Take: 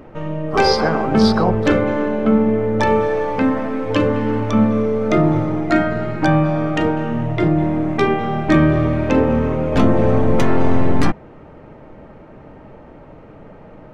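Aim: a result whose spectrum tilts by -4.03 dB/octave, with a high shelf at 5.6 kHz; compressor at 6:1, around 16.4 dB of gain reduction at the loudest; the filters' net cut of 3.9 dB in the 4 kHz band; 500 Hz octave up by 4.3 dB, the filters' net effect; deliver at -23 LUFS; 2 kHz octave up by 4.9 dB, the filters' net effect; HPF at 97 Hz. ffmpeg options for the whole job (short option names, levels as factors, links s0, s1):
-af "highpass=97,equalizer=f=500:t=o:g=5,equalizer=f=2000:t=o:g=7.5,equalizer=f=4000:t=o:g=-4.5,highshelf=f=5600:g=-6.5,acompressor=threshold=0.0501:ratio=6,volume=2"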